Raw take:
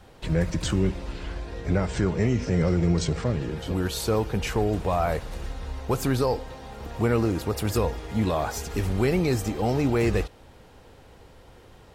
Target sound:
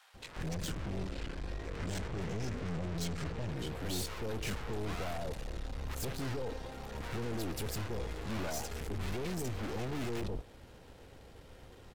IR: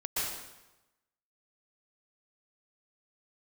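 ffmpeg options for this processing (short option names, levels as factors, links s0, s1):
-filter_complex "[0:a]aeval=exprs='(tanh(63.1*val(0)+0.65)-tanh(0.65))/63.1':c=same,acrossover=split=920[s0][s1];[s0]adelay=140[s2];[s2][s1]amix=inputs=2:normalize=0"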